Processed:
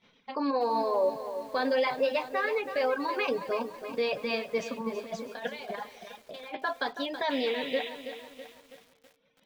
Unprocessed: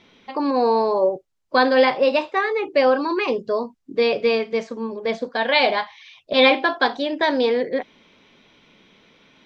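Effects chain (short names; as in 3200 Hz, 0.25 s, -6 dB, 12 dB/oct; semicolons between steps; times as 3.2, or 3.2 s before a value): reverb removal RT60 1.2 s; gate -55 dBFS, range -14 dB; bell 340 Hz -15 dB 0.21 oct; limiter -15 dBFS, peak gain reduction 9.5 dB; 4.58–6.57 negative-ratio compressor -30 dBFS, ratio -0.5; 7.3–7.89 painted sound noise 1800–4000 Hz -35 dBFS; flange 1.4 Hz, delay 5.3 ms, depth 2.2 ms, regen -53%; tape echo 0.166 s, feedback 81%, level -21 dB, low-pass 1300 Hz; lo-fi delay 0.326 s, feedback 55%, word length 8-bit, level -10 dB; gain -1 dB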